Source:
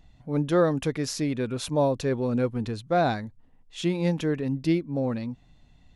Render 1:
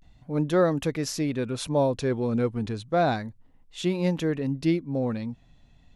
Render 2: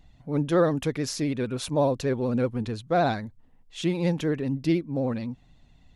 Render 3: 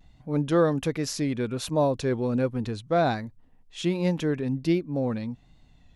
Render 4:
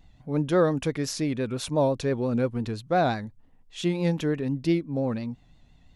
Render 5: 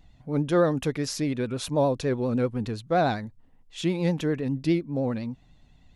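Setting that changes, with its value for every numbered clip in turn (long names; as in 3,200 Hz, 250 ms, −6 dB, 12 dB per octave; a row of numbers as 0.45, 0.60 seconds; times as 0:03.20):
pitch vibrato, speed: 0.32, 16, 1.3, 5.8, 9.8 Hertz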